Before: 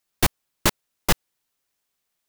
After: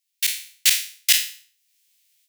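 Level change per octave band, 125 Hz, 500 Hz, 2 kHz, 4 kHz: below −30 dB, below −35 dB, +2.5 dB, +8.0 dB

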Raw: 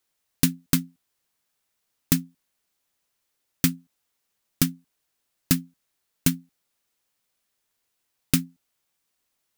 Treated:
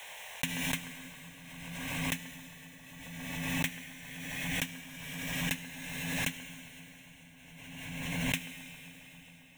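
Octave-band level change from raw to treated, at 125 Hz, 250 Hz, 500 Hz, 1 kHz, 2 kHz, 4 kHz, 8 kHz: −9.0, −10.5, −2.0, +2.5, +4.5, −3.0, −8.5 decibels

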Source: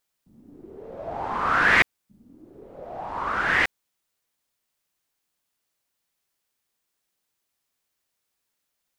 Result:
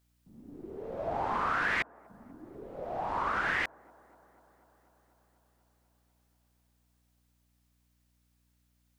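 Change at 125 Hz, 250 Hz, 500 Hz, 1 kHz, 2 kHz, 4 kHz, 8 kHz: −6.5, −6.0, −3.5, −6.0, −10.5, −11.0, −10.5 decibels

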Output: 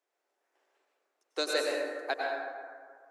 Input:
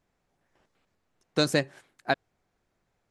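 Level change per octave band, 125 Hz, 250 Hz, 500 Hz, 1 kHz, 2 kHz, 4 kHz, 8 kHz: below −40 dB, −11.5 dB, −1.5 dB, −2.0 dB, −2.0 dB, −3.5 dB, −2.5 dB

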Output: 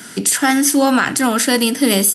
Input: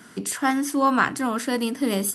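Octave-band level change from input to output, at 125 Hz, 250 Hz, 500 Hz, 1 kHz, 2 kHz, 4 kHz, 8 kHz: +7.5, +8.5, +8.5, +4.0, +8.0, +14.0, +14.0 decibels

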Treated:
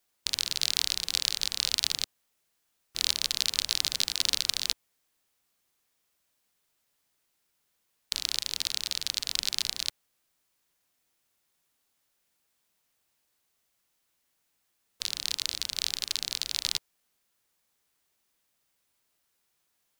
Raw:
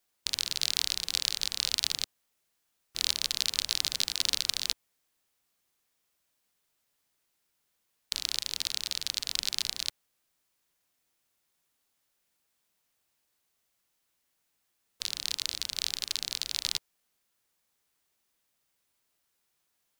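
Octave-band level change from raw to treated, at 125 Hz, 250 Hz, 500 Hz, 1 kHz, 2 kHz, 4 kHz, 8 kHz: +1.5, +1.5, +1.5, +1.5, +1.5, +1.5, +1.5 decibels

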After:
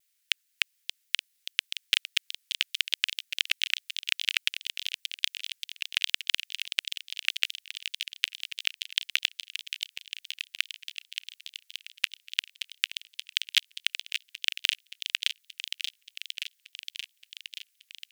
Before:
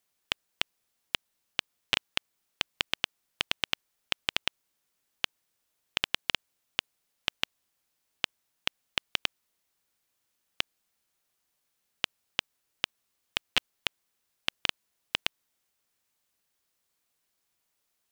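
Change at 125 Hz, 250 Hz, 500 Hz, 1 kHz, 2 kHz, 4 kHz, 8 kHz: below −40 dB, below −40 dB, below −35 dB, −10.5 dB, +4.0 dB, +5.0 dB, +6.5 dB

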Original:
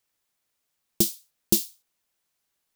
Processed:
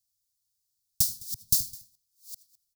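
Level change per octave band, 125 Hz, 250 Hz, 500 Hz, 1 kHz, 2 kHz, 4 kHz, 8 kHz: −4.5 dB, −19.5 dB, below −35 dB, below −35 dB, below −20 dB, −1.5 dB, −0.5 dB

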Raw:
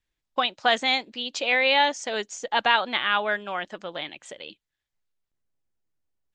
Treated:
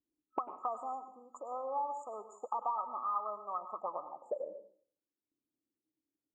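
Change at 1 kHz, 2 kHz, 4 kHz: −10.0 dB, below −40 dB, below −40 dB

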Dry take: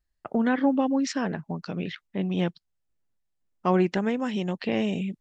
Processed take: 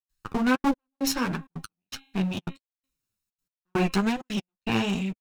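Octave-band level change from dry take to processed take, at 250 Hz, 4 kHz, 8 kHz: −1.5 dB, +4.5 dB, can't be measured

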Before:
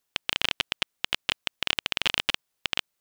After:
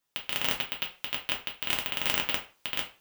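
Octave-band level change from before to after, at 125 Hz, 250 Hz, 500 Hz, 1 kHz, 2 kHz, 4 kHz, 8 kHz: −1.0, −0.5, −1.0, −1.5, −4.5, −5.5, −1.0 decibels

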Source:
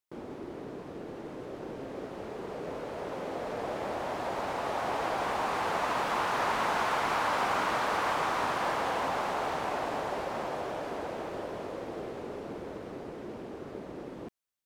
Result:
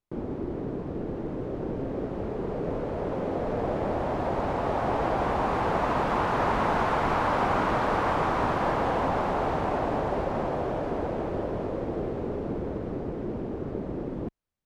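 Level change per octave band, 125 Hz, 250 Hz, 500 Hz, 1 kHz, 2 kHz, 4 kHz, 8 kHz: +13.5 dB, +9.5 dB, +6.5 dB, +3.5 dB, 0.0 dB, −3.5 dB, can't be measured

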